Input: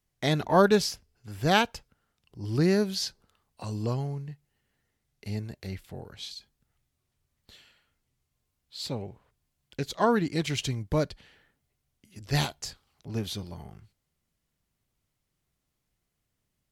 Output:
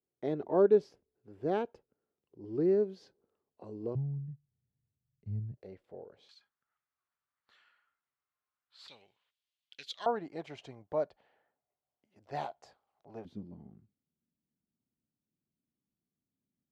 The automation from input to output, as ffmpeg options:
ffmpeg -i in.wav -af "asetnsamples=nb_out_samples=441:pad=0,asendcmd='3.95 bandpass f 120;5.57 bandpass f 500;6.29 bandpass f 1300;8.88 bandpass f 3300;10.06 bandpass f 700;13.25 bandpass f 240',bandpass=frequency=400:width_type=q:width=2.6:csg=0" out.wav

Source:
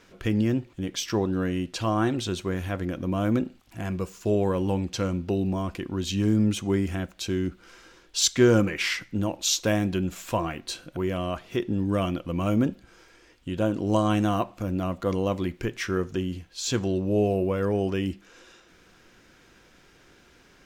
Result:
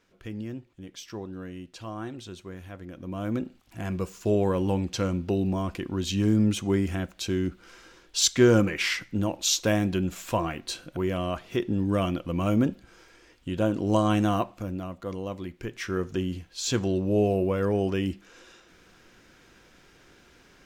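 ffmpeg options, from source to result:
ffmpeg -i in.wav -af "volume=8dB,afade=type=in:start_time=2.87:duration=1.17:silence=0.251189,afade=type=out:start_time=14.35:duration=0.53:silence=0.398107,afade=type=in:start_time=15.53:duration=0.69:silence=0.398107" out.wav

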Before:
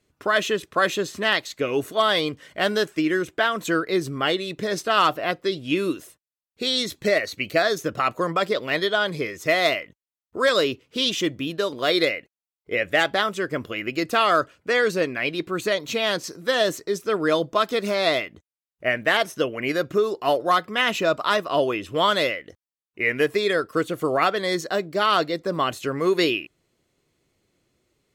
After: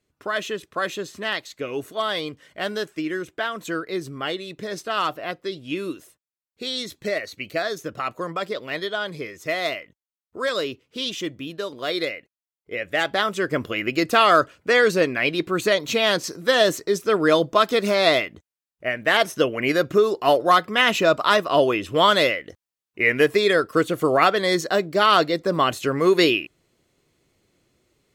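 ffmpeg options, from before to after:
ffmpeg -i in.wav -af "volume=10.5dB,afade=type=in:start_time=12.86:duration=0.68:silence=0.375837,afade=type=out:start_time=18.24:duration=0.72:silence=0.446684,afade=type=in:start_time=18.96:duration=0.27:silence=0.446684" out.wav

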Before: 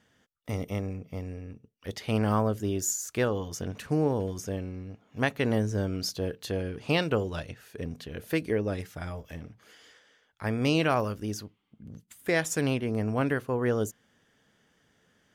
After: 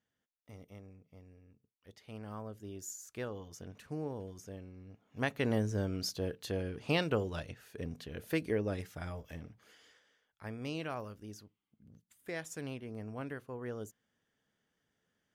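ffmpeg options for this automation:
ffmpeg -i in.wav -af "volume=-5dB,afade=type=in:start_time=2.23:duration=0.95:silence=0.473151,afade=type=in:start_time=4.75:duration=0.71:silence=0.375837,afade=type=out:start_time=9.4:duration=1.18:silence=0.334965" out.wav

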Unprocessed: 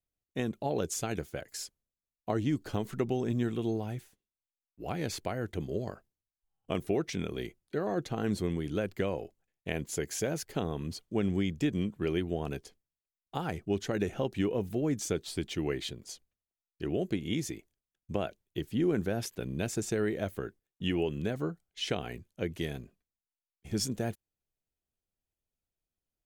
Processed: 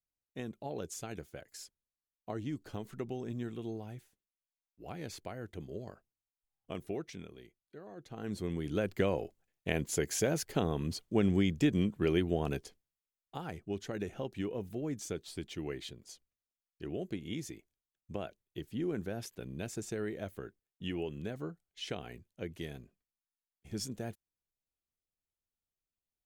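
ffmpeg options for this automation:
ffmpeg -i in.wav -af "volume=10.5dB,afade=type=out:start_time=6.96:duration=0.45:silence=0.354813,afade=type=in:start_time=7.98:duration=0.42:silence=0.266073,afade=type=in:start_time=8.4:duration=0.63:silence=0.421697,afade=type=out:start_time=12.54:duration=0.84:silence=0.375837" out.wav

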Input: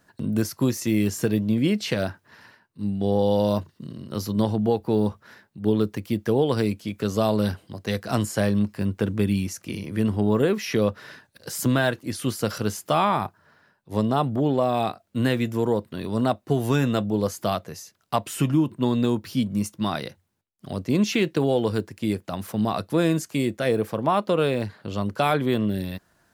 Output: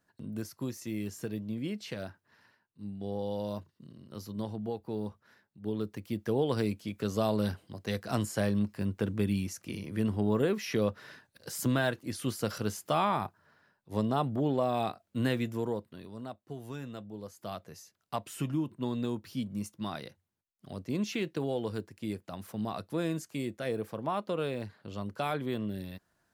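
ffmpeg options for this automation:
ffmpeg -i in.wav -af "volume=1.5dB,afade=type=in:start_time=5.61:duration=0.92:silence=0.446684,afade=type=out:start_time=15.35:duration=0.81:silence=0.237137,afade=type=in:start_time=17.33:duration=0.41:silence=0.375837" out.wav

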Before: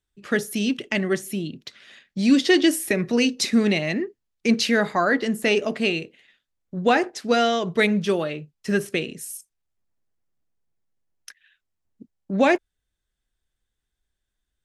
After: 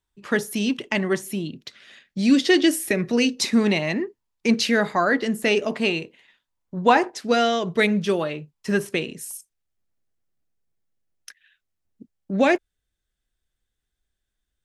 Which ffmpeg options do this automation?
ffmpeg -i in.wav -af "asetnsamples=nb_out_samples=441:pad=0,asendcmd='1.49 equalizer g -0.5;3.42 equalizer g 10.5;4.51 equalizer g 1.5;5.71 equalizer g 11.5;7.16 equalizer g 0;8.21 equalizer g 8;9.31 equalizer g -3.5',equalizer=frequency=960:width_type=o:width=0.38:gain=10.5" out.wav

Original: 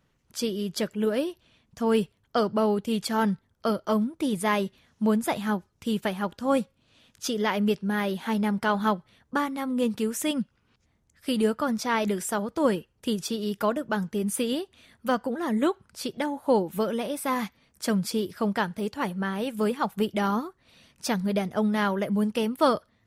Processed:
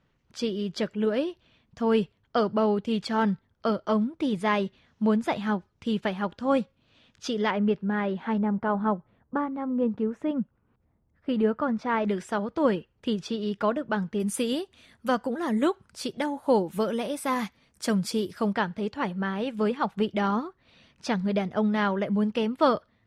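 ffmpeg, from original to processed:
ffmpeg -i in.wav -af "asetnsamples=nb_out_samples=441:pad=0,asendcmd='7.51 lowpass f 2000;8.38 lowpass f 1100;11.29 lowpass f 1900;12.09 lowpass f 3700;14.2 lowpass f 10000;18.53 lowpass f 4200',lowpass=4400" out.wav

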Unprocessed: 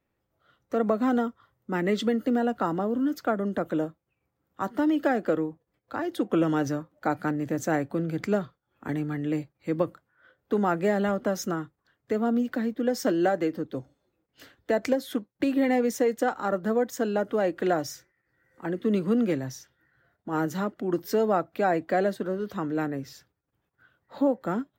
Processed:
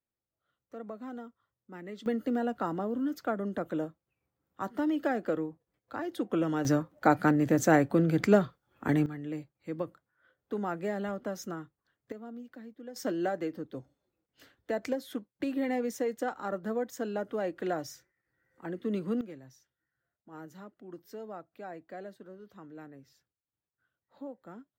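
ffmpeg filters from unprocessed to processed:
ffmpeg -i in.wav -af "asetnsamples=nb_out_samples=441:pad=0,asendcmd='2.06 volume volume -5.5dB;6.65 volume volume 3.5dB;9.06 volume volume -9dB;12.12 volume volume -19dB;12.96 volume volume -7.5dB;19.21 volume volume -19dB',volume=-17.5dB" out.wav

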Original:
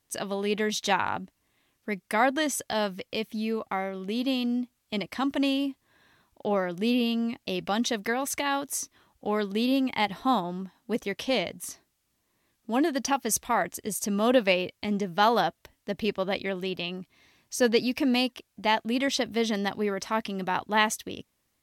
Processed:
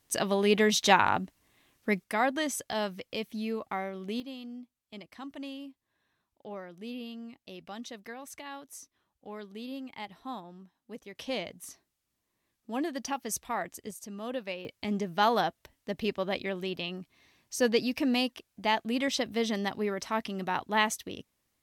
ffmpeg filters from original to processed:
ffmpeg -i in.wav -af "asetnsamples=nb_out_samples=441:pad=0,asendcmd='2.04 volume volume -4dB;4.2 volume volume -15dB;11.15 volume volume -7.5dB;13.91 volume volume -14dB;14.65 volume volume -3dB',volume=3.5dB" out.wav

